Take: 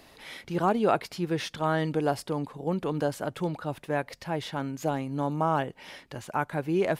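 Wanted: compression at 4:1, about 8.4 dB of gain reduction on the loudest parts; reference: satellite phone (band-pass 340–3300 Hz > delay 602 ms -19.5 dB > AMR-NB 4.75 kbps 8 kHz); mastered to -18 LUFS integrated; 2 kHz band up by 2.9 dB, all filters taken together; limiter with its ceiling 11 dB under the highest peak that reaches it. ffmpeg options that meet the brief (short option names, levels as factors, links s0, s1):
-af "equalizer=f=2000:t=o:g=4.5,acompressor=threshold=0.0355:ratio=4,alimiter=level_in=1.41:limit=0.0631:level=0:latency=1,volume=0.708,highpass=340,lowpass=3300,aecho=1:1:602:0.106,volume=15.8" -ar 8000 -c:a libopencore_amrnb -b:a 4750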